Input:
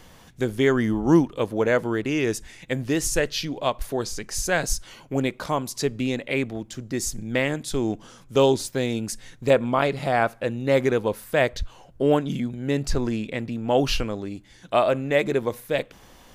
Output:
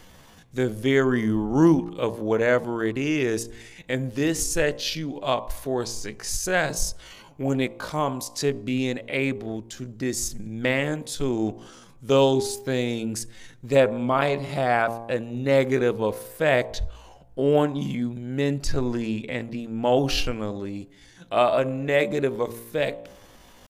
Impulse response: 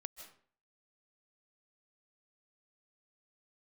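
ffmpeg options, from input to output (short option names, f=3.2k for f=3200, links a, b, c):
-af "bandreject=f=57.76:t=h:w=4,bandreject=f=115.52:t=h:w=4,bandreject=f=173.28:t=h:w=4,bandreject=f=231.04:t=h:w=4,bandreject=f=288.8:t=h:w=4,bandreject=f=346.56:t=h:w=4,bandreject=f=404.32:t=h:w=4,bandreject=f=462.08:t=h:w=4,bandreject=f=519.84:t=h:w=4,bandreject=f=577.6:t=h:w=4,bandreject=f=635.36:t=h:w=4,bandreject=f=693.12:t=h:w=4,bandreject=f=750.88:t=h:w=4,bandreject=f=808.64:t=h:w=4,bandreject=f=866.4:t=h:w=4,bandreject=f=924.16:t=h:w=4,bandreject=f=981.92:t=h:w=4,bandreject=f=1.03968k:t=h:w=4,bandreject=f=1.09744k:t=h:w=4,bandreject=f=1.1552k:t=h:w=4,atempo=0.69"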